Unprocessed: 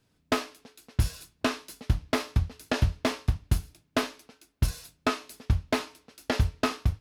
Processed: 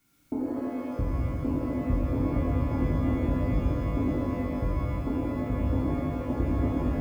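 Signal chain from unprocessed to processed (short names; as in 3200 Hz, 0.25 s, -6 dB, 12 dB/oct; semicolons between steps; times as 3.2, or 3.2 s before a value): vocal tract filter u; added noise blue -64 dBFS; tilt -2.5 dB/oct; small resonant body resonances 1400/2200 Hz, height 17 dB; shimmer reverb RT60 3.9 s, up +12 st, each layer -8 dB, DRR -8.5 dB; gain -2.5 dB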